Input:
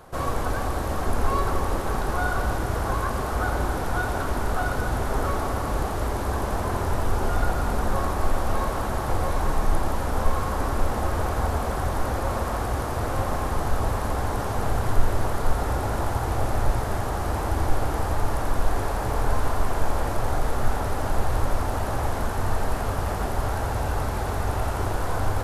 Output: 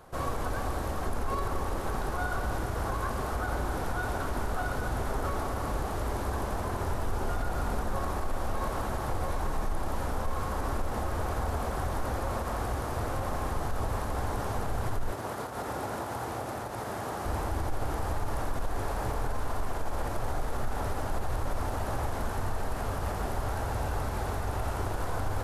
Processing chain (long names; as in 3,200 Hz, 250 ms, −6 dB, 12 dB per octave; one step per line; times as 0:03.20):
brickwall limiter −16.5 dBFS, peak gain reduction 11 dB
0:15.12–0:17.25: high-pass filter 150 Hz 12 dB per octave
level −5 dB